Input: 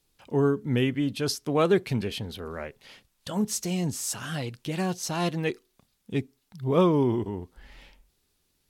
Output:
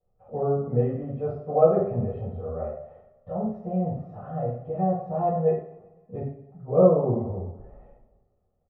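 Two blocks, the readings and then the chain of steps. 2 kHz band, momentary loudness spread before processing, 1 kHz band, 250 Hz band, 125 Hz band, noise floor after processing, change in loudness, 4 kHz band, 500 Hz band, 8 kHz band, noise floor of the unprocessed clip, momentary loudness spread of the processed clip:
under -20 dB, 14 LU, +3.5 dB, -2.5 dB, +1.0 dB, -71 dBFS, +1.5 dB, under -35 dB, +4.5 dB, under -40 dB, -73 dBFS, 16 LU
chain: four-pole ladder low-pass 880 Hz, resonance 40%; comb 1.6 ms, depth 77%; two-slope reverb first 0.56 s, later 1.6 s, from -17 dB, DRR -10 dB; trim -2.5 dB

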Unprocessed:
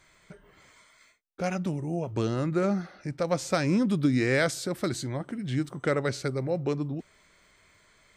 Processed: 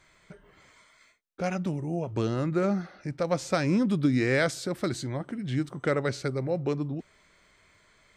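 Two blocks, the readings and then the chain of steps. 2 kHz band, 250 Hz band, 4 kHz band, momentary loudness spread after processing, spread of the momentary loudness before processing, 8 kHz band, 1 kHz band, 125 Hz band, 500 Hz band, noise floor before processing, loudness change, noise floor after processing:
0.0 dB, 0.0 dB, -1.0 dB, 9 LU, 9 LU, -2.5 dB, 0.0 dB, 0.0 dB, 0.0 dB, -62 dBFS, 0.0 dB, -63 dBFS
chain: treble shelf 8.6 kHz -7 dB

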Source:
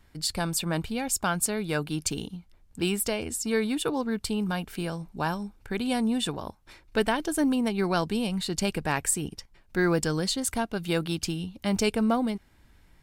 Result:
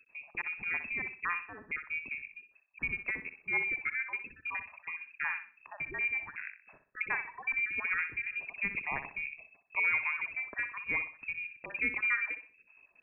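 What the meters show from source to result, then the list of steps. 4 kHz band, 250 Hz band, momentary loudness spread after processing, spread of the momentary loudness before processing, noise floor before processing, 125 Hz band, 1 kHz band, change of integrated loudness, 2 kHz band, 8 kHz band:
under -25 dB, -26.5 dB, 11 LU, 8 LU, -60 dBFS, -24.0 dB, -10.5 dB, -5.5 dB, +4.0 dB, under -40 dB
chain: random holes in the spectrogram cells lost 36%; frequency inversion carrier 2.6 kHz; flutter echo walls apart 10.7 m, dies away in 0.37 s; trim -6 dB

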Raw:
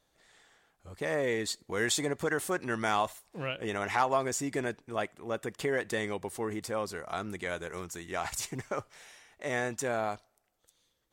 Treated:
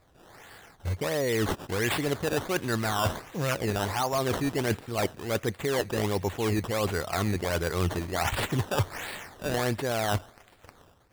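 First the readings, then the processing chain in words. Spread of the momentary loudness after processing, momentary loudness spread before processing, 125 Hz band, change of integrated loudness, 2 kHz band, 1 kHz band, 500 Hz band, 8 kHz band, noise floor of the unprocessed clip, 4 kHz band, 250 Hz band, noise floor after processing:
5 LU, 9 LU, +12.5 dB, +4.0 dB, +2.0 dB, +2.0 dB, +4.0 dB, +1.0 dB, -76 dBFS, +5.5 dB, +6.0 dB, -58 dBFS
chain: in parallel at -7 dB: integer overflow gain 18.5 dB; on the sum: level rider gain up to 7 dB; treble shelf 4.3 kHz -6.5 dB; reverse; compression 6:1, threshold -34 dBFS, peak gain reduction 18 dB; reverse; peaking EQ 91 Hz +10 dB 0.96 oct; feedback echo behind a high-pass 122 ms, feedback 76%, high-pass 4.7 kHz, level -11 dB; decimation with a swept rate 14×, swing 100% 1.4 Hz; trim +7.5 dB

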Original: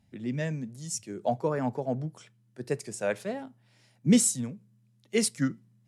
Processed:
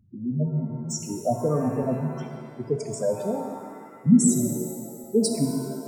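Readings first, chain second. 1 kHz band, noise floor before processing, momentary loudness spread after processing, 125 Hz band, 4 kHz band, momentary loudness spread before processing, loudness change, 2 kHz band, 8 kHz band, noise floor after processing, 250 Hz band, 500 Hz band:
+3.0 dB, -66 dBFS, 16 LU, +6.5 dB, -1.0 dB, 16 LU, +4.5 dB, -10.5 dB, +1.5 dB, -44 dBFS, +6.0 dB, +5.0 dB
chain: square wave that keeps the level; spectral gate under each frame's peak -10 dB strong; pitch-shifted reverb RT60 1.9 s, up +7 st, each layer -8 dB, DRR 4 dB; trim +1.5 dB

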